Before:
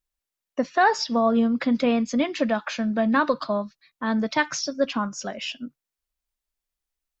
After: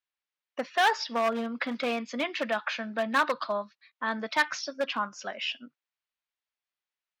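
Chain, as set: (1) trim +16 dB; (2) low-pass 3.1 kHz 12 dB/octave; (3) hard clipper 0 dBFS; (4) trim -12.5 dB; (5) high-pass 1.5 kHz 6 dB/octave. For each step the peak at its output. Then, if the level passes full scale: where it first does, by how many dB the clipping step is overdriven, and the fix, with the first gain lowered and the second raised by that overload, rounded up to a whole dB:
+7.5 dBFS, +7.5 dBFS, 0.0 dBFS, -12.5 dBFS, -11.0 dBFS; step 1, 7.5 dB; step 1 +8 dB, step 4 -4.5 dB

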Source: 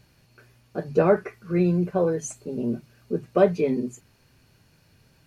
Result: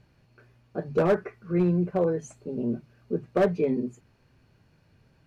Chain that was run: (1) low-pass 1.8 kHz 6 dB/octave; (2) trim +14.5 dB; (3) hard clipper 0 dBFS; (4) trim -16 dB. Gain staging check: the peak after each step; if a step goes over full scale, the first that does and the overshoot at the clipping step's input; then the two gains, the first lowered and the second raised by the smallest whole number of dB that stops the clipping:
-6.5 dBFS, +8.0 dBFS, 0.0 dBFS, -16.0 dBFS; step 2, 8.0 dB; step 2 +6.5 dB, step 4 -8 dB

